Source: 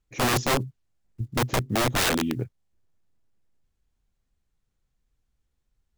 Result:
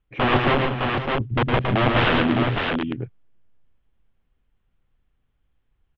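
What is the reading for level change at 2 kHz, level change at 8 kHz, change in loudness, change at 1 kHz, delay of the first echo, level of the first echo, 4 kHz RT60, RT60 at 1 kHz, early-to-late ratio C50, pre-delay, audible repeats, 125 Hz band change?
+6.5 dB, under -30 dB, +4.0 dB, +7.0 dB, 110 ms, -4.5 dB, no reverb, no reverb, no reverb, no reverb, 4, +6.5 dB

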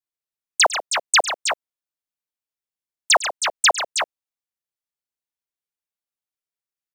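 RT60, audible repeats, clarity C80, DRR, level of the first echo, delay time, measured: no reverb, 3, no reverb, no reverb, -17.0 dB, 103 ms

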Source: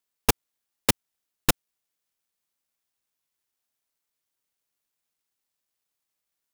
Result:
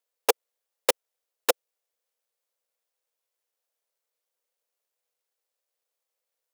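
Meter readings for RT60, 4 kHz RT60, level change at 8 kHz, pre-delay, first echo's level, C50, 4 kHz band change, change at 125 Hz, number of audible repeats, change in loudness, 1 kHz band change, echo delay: no reverb, no reverb, -2.5 dB, no reverb, no echo, no reverb, -2.5 dB, under -30 dB, no echo, -1.0 dB, 0.0 dB, no echo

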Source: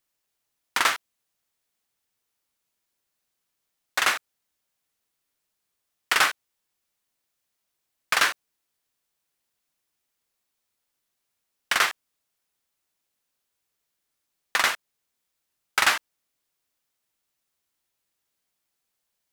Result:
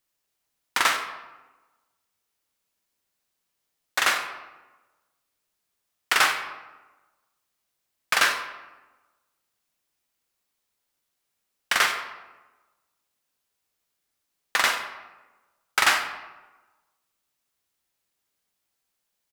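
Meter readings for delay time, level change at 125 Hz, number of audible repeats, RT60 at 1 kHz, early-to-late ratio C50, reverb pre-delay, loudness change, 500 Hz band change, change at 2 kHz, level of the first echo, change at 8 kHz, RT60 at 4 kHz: 95 ms, no reading, 1, 1.1 s, 7.5 dB, 20 ms, +0.5 dB, +1.5 dB, +1.0 dB, -15.5 dB, +0.5 dB, 0.70 s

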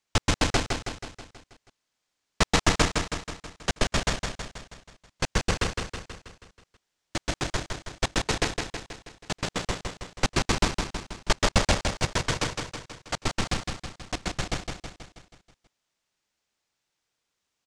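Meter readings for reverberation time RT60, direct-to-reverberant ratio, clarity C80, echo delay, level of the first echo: no reverb, no reverb, no reverb, 161 ms, -5.0 dB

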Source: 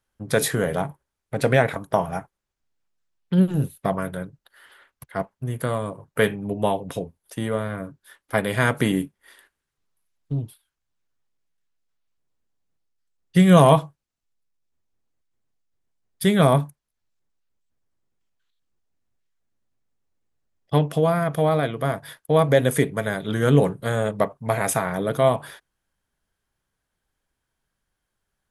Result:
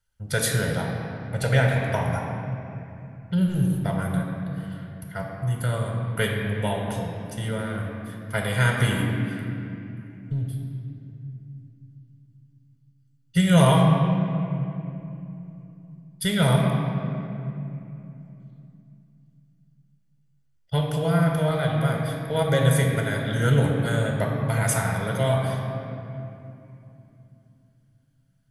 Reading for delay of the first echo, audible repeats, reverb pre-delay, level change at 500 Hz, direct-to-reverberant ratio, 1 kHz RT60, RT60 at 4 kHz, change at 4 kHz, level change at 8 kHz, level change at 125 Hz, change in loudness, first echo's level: no echo, no echo, 3 ms, -5.0 dB, -0.5 dB, 2.7 s, 1.9 s, +1.5 dB, +0.5 dB, +2.5 dB, -2.5 dB, no echo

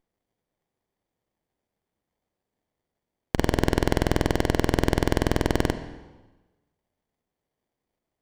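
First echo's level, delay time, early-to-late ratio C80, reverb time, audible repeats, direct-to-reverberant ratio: no echo, no echo, 12.5 dB, 1.2 s, no echo, 10.0 dB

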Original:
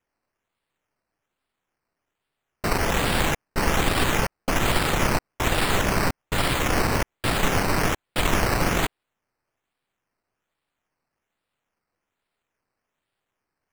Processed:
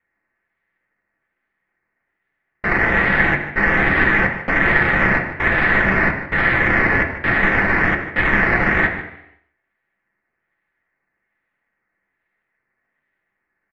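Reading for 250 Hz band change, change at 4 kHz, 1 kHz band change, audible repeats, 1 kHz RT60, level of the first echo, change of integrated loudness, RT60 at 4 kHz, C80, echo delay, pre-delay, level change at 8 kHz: +4.5 dB, -6.5 dB, +4.0 dB, 1, 0.80 s, -13.5 dB, +7.5 dB, 0.80 s, 9.0 dB, 150 ms, 3 ms, under -20 dB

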